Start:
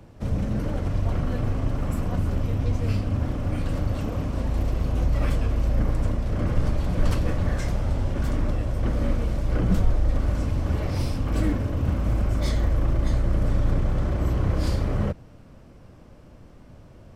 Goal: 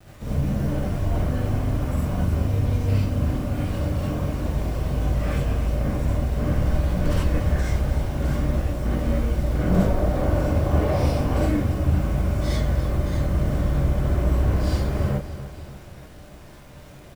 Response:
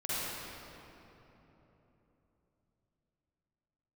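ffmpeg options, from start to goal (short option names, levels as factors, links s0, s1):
-filter_complex "[0:a]asettb=1/sr,asplit=3[s0][s1][s2];[s0]atrim=end=9.654[s3];[s1]atrim=start=9.65:end=11.38,asetpts=PTS-STARTPTS,afade=t=in:d=0.004:c=qsin,afade=t=out:st=1.726:d=0.004:c=qsin,equalizer=f=600:w=0.52:g=8[s4];[s2]atrim=start=11.376[s5];[s3][s4]acrossfade=d=0.004:c1=hsin:c2=qsin[s6];[s6][s5]acrossfade=d=0.004:c1=qsin:c2=hsin,acrusher=bits=7:mix=0:aa=0.000001,aecho=1:1:291|582|873|1164|1455|1746:0.224|0.128|0.0727|0.0415|0.0236|0.0135[s7];[1:a]atrim=start_sample=2205,atrim=end_sample=4410[s8];[s7][s8]afir=irnorm=-1:irlink=0"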